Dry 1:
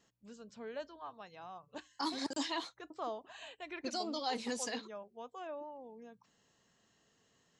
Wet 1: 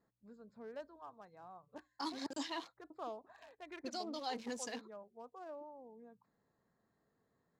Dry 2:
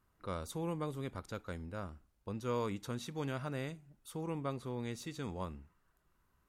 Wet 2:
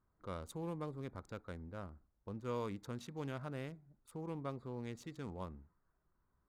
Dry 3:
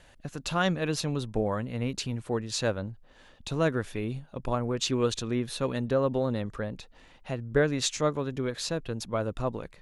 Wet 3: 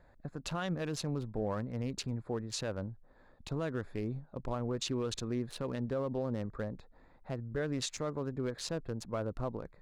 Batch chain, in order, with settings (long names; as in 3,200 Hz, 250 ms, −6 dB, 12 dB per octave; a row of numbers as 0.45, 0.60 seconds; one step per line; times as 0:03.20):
adaptive Wiener filter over 15 samples
brickwall limiter −21.5 dBFS
level −4 dB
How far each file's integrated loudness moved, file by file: −4.5, −4.5, −7.5 LU